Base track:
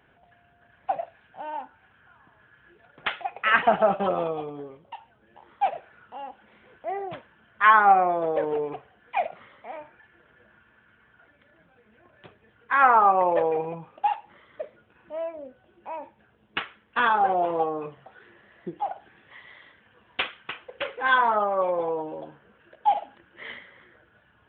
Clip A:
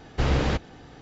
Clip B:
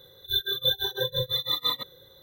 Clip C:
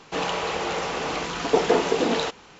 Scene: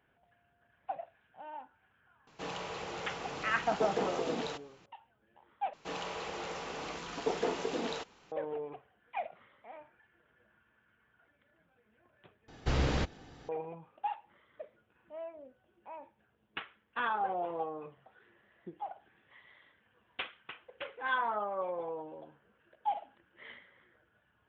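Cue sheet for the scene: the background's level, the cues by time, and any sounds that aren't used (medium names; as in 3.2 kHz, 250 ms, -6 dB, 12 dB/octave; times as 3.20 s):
base track -11.5 dB
2.27 s: add C -14 dB + peaking EQ 120 Hz +7.5 dB
5.73 s: replace with C -13 dB
12.48 s: replace with A -7 dB + treble shelf 4.2 kHz +4 dB
not used: B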